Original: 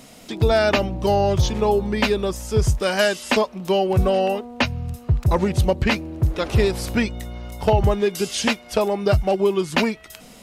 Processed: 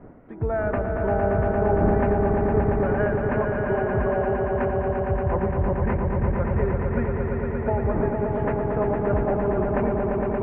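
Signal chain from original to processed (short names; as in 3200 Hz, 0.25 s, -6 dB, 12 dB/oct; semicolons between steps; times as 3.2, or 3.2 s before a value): wind noise 360 Hz -29 dBFS; steep low-pass 1800 Hz 36 dB/oct; swelling echo 0.115 s, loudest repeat 5, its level -6 dB; gain -8 dB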